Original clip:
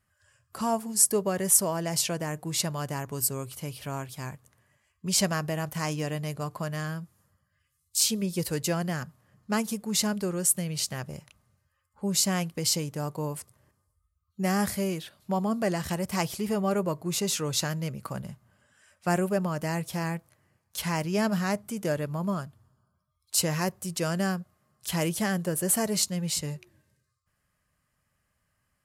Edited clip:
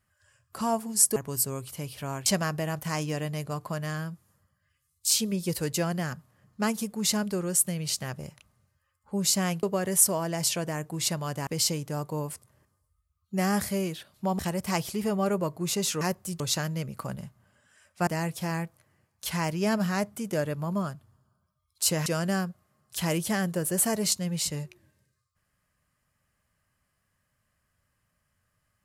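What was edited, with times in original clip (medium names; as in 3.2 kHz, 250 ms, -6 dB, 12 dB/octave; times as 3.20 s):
1.16–3.00 s: move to 12.53 s
4.10–5.16 s: delete
15.45–15.84 s: delete
19.13–19.59 s: delete
23.58–23.97 s: move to 17.46 s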